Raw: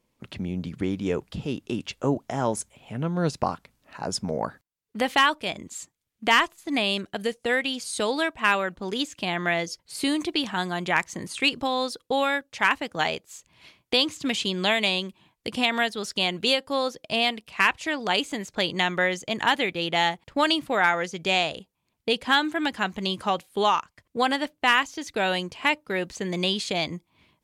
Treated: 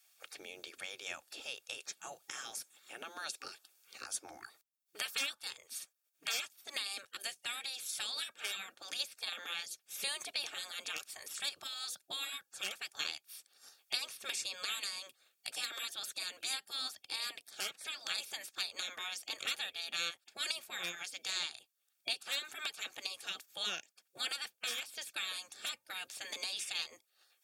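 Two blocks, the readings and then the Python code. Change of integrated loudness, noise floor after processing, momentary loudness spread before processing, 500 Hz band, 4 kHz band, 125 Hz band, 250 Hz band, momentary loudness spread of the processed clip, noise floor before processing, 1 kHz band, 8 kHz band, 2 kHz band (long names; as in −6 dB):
−14.0 dB, −81 dBFS, 10 LU, −26.5 dB, −10.5 dB, below −35 dB, −34.0 dB, 10 LU, −77 dBFS, −24.0 dB, −3.5 dB, −16.5 dB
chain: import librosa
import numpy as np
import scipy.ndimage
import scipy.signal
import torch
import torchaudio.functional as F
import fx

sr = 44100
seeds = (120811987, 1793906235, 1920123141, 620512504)

y = fx.spec_gate(x, sr, threshold_db=-15, keep='weak')
y = fx.tilt_eq(y, sr, slope=3.0)
y = fx.notch_comb(y, sr, f0_hz=1000.0)
y = fx.band_squash(y, sr, depth_pct=40)
y = y * 10.0 ** (-7.0 / 20.0)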